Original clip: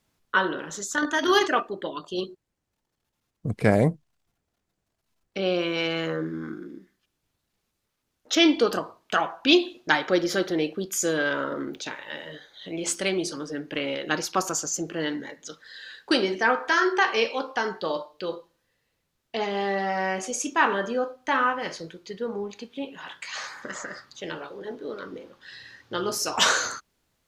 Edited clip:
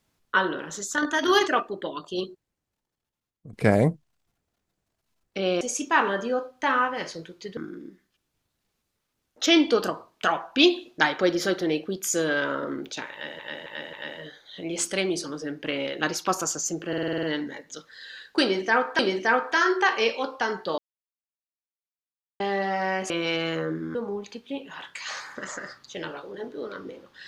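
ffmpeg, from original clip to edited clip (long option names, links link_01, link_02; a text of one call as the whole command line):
ffmpeg -i in.wav -filter_complex "[0:a]asplit=19[link_01][link_02][link_03][link_04][link_05][link_06][link_07][link_08][link_09][link_10][link_11][link_12][link_13][link_14][link_15][link_16][link_17][link_18][link_19];[link_01]atrim=end=3.53,asetpts=PTS-STARTPTS,afade=type=out:start_time=2.24:duration=1.29:silence=0.133352[link_20];[link_02]atrim=start=3.53:end=5.612,asetpts=PTS-STARTPTS,afade=type=in:duration=0.004:curve=hsin:silence=0.133352[link_21];[link_03]atrim=start=20.258:end=22.222[link_22];[link_04]atrim=start=6.458:end=12.282[link_23];[link_05]atrim=start=12.008:end=12.282[link_24];[link_06]atrim=start=12.008:end=12.282[link_25];[link_07]atrim=start=12.008:end=15.012[link_26];[link_08]atrim=start=14.958:end=15.012[link_27];[link_09]atrim=start=14.958:end=15.012[link_28];[link_10]atrim=start=14.958:end=15.012[link_29];[link_11]atrim=start=14.958:end=15.012[link_30];[link_12]atrim=start=14.958:end=15.012[link_31];[link_13]atrim=start=14.958:end=15.012[link_32];[link_14]atrim=start=14.958:end=16.722[link_33];[link_15]atrim=start=16.148:end=17.94,asetpts=PTS-STARTPTS,afade=type=out:start_time=1.788:duration=0.004:curve=hsin[link_34];[link_16]atrim=start=17.94:end=19.56,asetpts=PTS-STARTPTS,volume=0[link_35];[link_17]atrim=start=19.56:end=20.262,asetpts=PTS-STARTPTS,afade=type=in:duration=0.004:curve=hsin[link_36];[link_18]atrim=start=5.608:end=6.462[link_37];[link_19]atrim=start=22.218[link_38];[link_20][link_21]concat=n=2:v=0:a=1[link_39];[link_39][link_22]acrossfade=duration=0.004:curve1=hsin:curve2=hsin[link_40];[link_40][link_23]acrossfade=duration=0.004:curve1=hsin:curve2=hsin[link_41];[link_41][link_24]acrossfade=duration=0.004:curve1=hsin:curve2=hsin[link_42];[link_42][link_25]acrossfade=duration=0.004:curve1=hsin:curve2=hsin[link_43];[link_43][link_26]acrossfade=duration=0.004:curve1=hsin:curve2=hsin[link_44];[link_44][link_27]acrossfade=duration=0.004:curve1=hsin:curve2=hsin[link_45];[link_45][link_28]acrossfade=duration=0.004:curve1=hsin:curve2=hsin[link_46];[link_46][link_29]acrossfade=duration=0.004:curve1=hsin:curve2=hsin[link_47];[link_47][link_30]acrossfade=duration=0.004:curve1=hsin:curve2=hsin[link_48];[link_48][link_31]acrossfade=duration=0.004:curve1=hsin:curve2=hsin[link_49];[link_49][link_32]acrossfade=duration=0.004:curve1=hsin:curve2=hsin[link_50];[link_50][link_33]acrossfade=duration=0.004:curve1=hsin:curve2=hsin[link_51];[link_34][link_35][link_36]concat=n=3:v=0:a=1[link_52];[link_51][link_52]acrossfade=duration=0.004:curve1=hsin:curve2=hsin[link_53];[link_53][link_37]acrossfade=duration=0.004:curve1=hsin:curve2=hsin[link_54];[link_54][link_38]acrossfade=duration=0.004:curve1=hsin:curve2=hsin" out.wav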